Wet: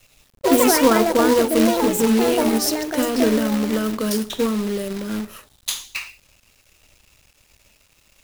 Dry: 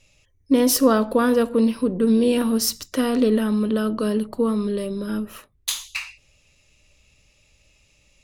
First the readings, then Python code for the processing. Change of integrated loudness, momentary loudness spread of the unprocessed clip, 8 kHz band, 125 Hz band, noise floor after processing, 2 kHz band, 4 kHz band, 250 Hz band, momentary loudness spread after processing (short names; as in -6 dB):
+2.0 dB, 11 LU, +3.0 dB, +0.5 dB, -59 dBFS, +5.5 dB, +3.0 dB, +0.5 dB, 14 LU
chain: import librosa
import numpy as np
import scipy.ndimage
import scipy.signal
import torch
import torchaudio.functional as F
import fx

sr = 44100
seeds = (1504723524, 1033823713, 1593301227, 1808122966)

y = fx.echo_pitch(x, sr, ms=93, semitones=6, count=2, db_per_echo=-3.0)
y = fx.hum_notches(y, sr, base_hz=60, count=7)
y = fx.quant_companded(y, sr, bits=4)